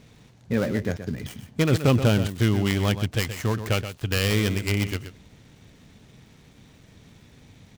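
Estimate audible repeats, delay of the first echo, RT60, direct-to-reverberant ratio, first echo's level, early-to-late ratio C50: 1, 126 ms, no reverb, no reverb, -10.5 dB, no reverb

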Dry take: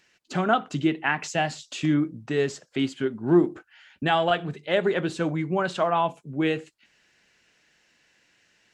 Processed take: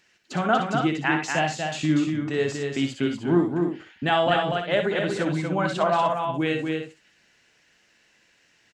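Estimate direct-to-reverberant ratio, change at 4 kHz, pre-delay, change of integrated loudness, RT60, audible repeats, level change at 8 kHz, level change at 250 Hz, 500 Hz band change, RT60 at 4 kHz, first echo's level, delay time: no reverb, +2.0 dB, no reverb, +1.0 dB, no reverb, 3, +2.0 dB, +1.0 dB, +1.0 dB, no reverb, -7.5 dB, 58 ms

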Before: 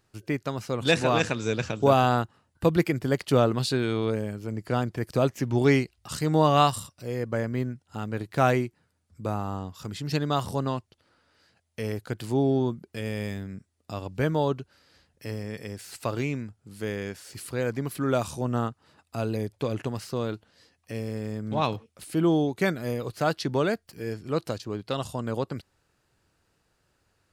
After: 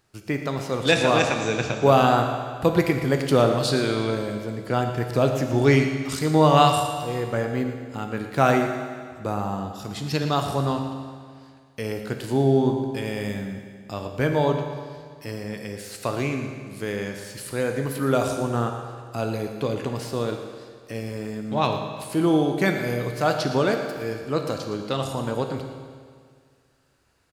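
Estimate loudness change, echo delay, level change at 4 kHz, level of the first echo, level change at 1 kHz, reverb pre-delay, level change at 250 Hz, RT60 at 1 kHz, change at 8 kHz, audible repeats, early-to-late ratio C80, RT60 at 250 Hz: +4.0 dB, 116 ms, +4.5 dB, -12.5 dB, +4.5 dB, 15 ms, +3.5 dB, 1.9 s, +4.5 dB, 1, 6.5 dB, 2.0 s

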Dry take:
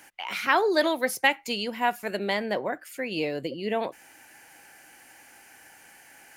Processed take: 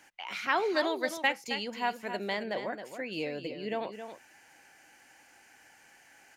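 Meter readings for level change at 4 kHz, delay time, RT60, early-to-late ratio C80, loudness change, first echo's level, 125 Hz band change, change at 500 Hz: -5.5 dB, 269 ms, no reverb, no reverb, -5.5 dB, -9.5 dB, -6.5 dB, -6.0 dB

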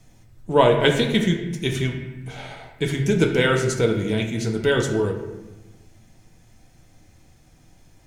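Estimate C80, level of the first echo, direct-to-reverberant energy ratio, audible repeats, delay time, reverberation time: 8.5 dB, no echo, 2.5 dB, no echo, no echo, 1.1 s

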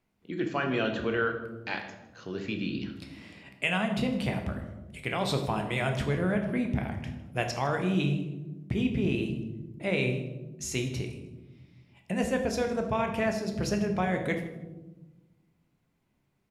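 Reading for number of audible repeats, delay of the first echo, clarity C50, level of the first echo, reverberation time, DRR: 1, 157 ms, 7.5 dB, -18.5 dB, 1.1 s, 4.0 dB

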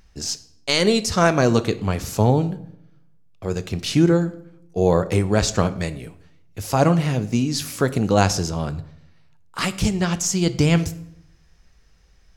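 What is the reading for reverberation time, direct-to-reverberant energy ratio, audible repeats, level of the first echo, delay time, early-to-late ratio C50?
0.75 s, 12.0 dB, no echo, no echo, no echo, 16.5 dB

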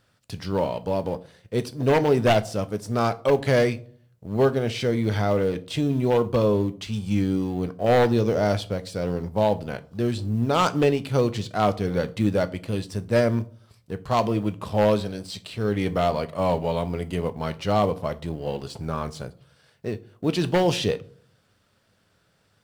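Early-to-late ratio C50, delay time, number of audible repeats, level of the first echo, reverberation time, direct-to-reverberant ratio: 20.5 dB, no echo, no echo, no echo, 0.55 s, 11.5 dB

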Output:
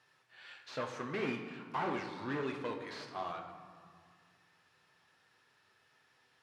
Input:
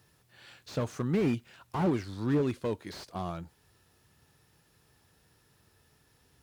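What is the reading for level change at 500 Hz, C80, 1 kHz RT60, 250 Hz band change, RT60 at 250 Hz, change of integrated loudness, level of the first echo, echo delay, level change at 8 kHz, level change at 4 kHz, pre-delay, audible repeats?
-6.5 dB, 8.5 dB, 2.0 s, -10.5 dB, 2.2 s, -7.5 dB, no echo, no echo, -8.0 dB, -1.5 dB, 8 ms, no echo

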